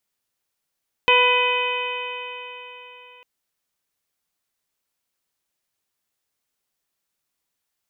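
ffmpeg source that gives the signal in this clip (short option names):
-f lavfi -i "aevalsrc='0.112*pow(10,-3*t/3.76)*sin(2*PI*493.39*t)+0.141*pow(10,-3*t/3.76)*sin(2*PI*989.15*t)+0.0355*pow(10,-3*t/3.76)*sin(2*PI*1489.61*t)+0.0668*pow(10,-3*t/3.76)*sin(2*PI*1997.08*t)+0.168*pow(10,-3*t/3.76)*sin(2*PI*2513.82*t)+0.1*pow(10,-3*t/3.76)*sin(2*PI*3042*t)+0.0158*pow(10,-3*t/3.76)*sin(2*PI*3583.73*t)':d=2.15:s=44100"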